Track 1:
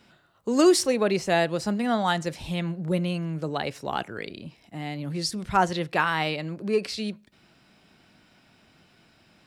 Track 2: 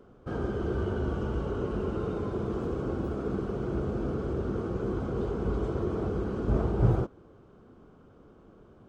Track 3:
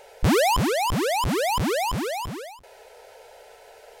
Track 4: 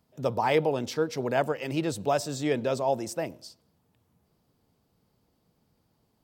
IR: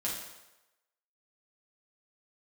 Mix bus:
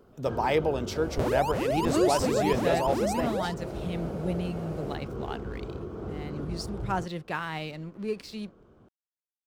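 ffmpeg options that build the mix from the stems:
-filter_complex "[0:a]lowshelf=frequency=180:gain=10,aeval=exprs='sgn(val(0))*max(abs(val(0))-0.00708,0)':channel_layout=same,adelay=1350,volume=-9dB[link_01];[1:a]alimiter=level_in=0.5dB:limit=-24dB:level=0:latency=1:release=460,volume=-0.5dB,volume=-2.5dB[link_02];[2:a]equalizer=frequency=580:width_type=o:width=1.2:gain=13.5,acompressor=threshold=-23dB:ratio=6,adelay=950,volume=-4.5dB[link_03];[3:a]acontrast=82,volume=-8dB[link_04];[link_01][link_02][link_03][link_04]amix=inputs=4:normalize=0"

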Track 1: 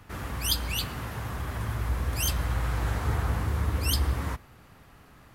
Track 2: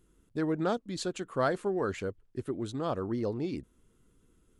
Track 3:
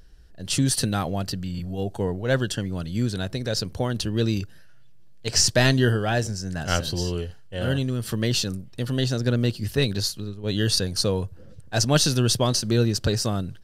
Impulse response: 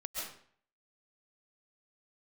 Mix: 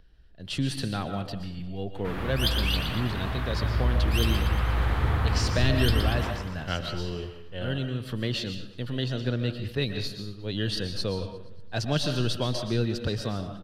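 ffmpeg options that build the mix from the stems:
-filter_complex "[0:a]adelay=1950,volume=-0.5dB,asplit=3[link_01][link_02][link_03];[link_02]volume=-11dB[link_04];[link_03]volume=-5dB[link_05];[2:a]volume=-8.5dB,asplit=3[link_06][link_07][link_08];[link_07]volume=-5dB[link_09];[link_08]volume=-15.5dB[link_10];[3:a]atrim=start_sample=2205[link_11];[link_04][link_09]amix=inputs=2:normalize=0[link_12];[link_12][link_11]afir=irnorm=-1:irlink=0[link_13];[link_05][link_10]amix=inputs=2:normalize=0,aecho=0:1:118|236|354|472|590|708|826|944|1062:1|0.59|0.348|0.205|0.121|0.0715|0.0422|0.0249|0.0147[link_14];[link_01][link_06][link_13][link_14]amix=inputs=4:normalize=0,highshelf=frequency=4800:width_type=q:width=1.5:gain=-10,acrossover=split=390|3000[link_15][link_16][link_17];[link_16]acompressor=threshold=-28dB:ratio=6[link_18];[link_15][link_18][link_17]amix=inputs=3:normalize=0"

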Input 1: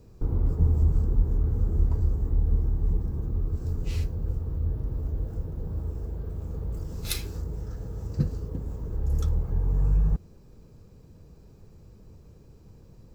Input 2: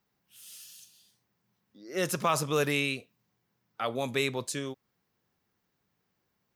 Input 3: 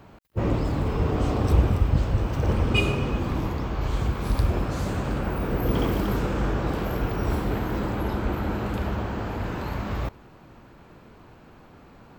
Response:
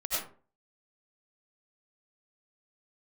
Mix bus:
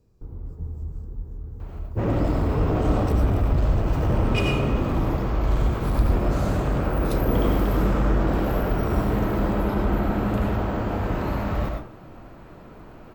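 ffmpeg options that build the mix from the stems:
-filter_complex "[0:a]volume=-11dB[link_01];[2:a]equalizer=frequency=4800:width_type=o:width=3:gain=-6,asoftclip=type=tanh:threshold=-21dB,adelay=1600,volume=0.5dB,asplit=2[link_02][link_03];[link_03]volume=-4dB[link_04];[3:a]atrim=start_sample=2205[link_05];[link_04][link_05]afir=irnorm=-1:irlink=0[link_06];[link_01][link_02][link_06]amix=inputs=3:normalize=0"

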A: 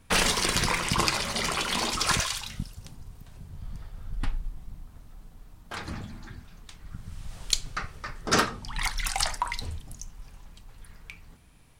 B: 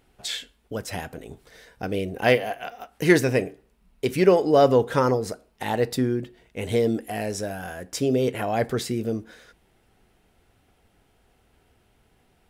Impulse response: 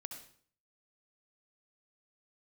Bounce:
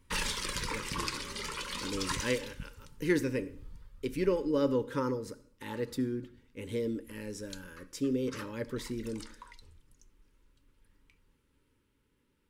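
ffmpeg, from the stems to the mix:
-filter_complex "[0:a]flanger=delay=1:depth=1.7:regen=57:speed=0.45:shape=sinusoidal,volume=-6dB,afade=type=out:start_time=3.59:duration=0.63:silence=0.251189[link_01];[1:a]equalizer=frequency=280:width_type=o:width=0.32:gain=9,volume=-14.5dB,asplit=2[link_02][link_03];[link_03]volume=-7dB[link_04];[2:a]atrim=start_sample=2205[link_05];[link_04][link_05]afir=irnorm=-1:irlink=0[link_06];[link_01][link_02][link_06]amix=inputs=3:normalize=0,asuperstop=centerf=710:order=12:qfactor=2.8"

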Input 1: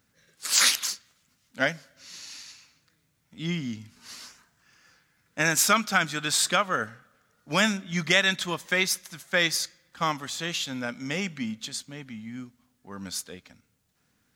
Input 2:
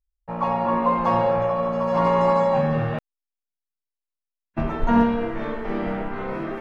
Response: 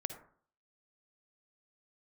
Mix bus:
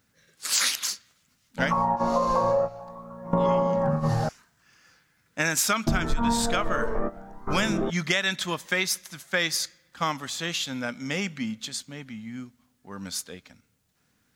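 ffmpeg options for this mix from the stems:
-filter_complex "[0:a]volume=1dB,asplit=2[link_01][link_02];[1:a]lowpass=frequency=1500:width=0.5412,lowpass=frequency=1500:width=1.3066,aphaser=in_gain=1:out_gain=1:delay=2:decay=0.52:speed=0.45:type=triangular,adelay=1300,volume=1.5dB[link_03];[link_02]apad=whole_len=348736[link_04];[link_03][link_04]sidechaingate=range=-19dB:threshold=-53dB:ratio=16:detection=peak[link_05];[link_01][link_05]amix=inputs=2:normalize=0,acompressor=threshold=-20dB:ratio=6"

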